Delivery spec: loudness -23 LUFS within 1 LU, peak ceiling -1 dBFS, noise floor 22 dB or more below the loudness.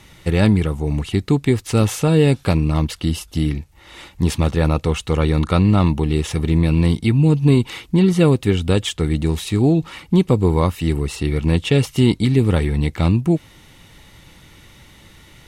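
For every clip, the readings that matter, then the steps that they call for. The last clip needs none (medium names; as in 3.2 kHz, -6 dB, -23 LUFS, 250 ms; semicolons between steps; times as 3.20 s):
loudness -18.0 LUFS; peak level -2.5 dBFS; loudness target -23.0 LUFS
-> trim -5 dB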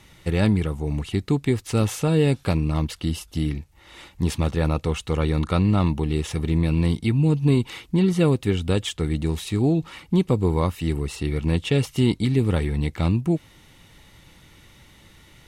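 loudness -23.0 LUFS; peak level -7.5 dBFS; noise floor -53 dBFS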